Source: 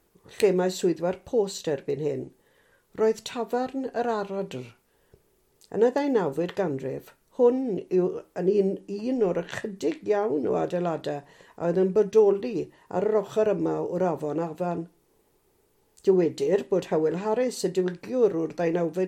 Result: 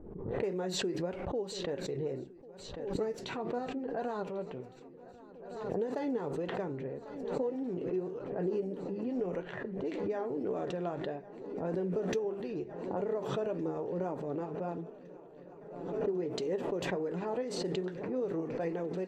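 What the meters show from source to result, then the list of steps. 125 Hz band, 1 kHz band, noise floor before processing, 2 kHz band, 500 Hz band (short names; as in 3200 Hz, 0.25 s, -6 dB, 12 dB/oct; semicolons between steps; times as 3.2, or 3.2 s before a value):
-7.0 dB, -9.0 dB, -67 dBFS, -7.0 dB, -10.5 dB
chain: low-pass opened by the level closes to 420 Hz, open at -21 dBFS; flange 1.7 Hz, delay 3.1 ms, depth 5.8 ms, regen +61%; compressor, threshold -27 dBFS, peak gain reduction 10 dB; high shelf 3200 Hz -7 dB; on a send: swung echo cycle 1.461 s, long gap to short 3:1, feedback 75%, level -20 dB; on the sum: backwards sustainer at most 46 dB/s; gain -3.5 dB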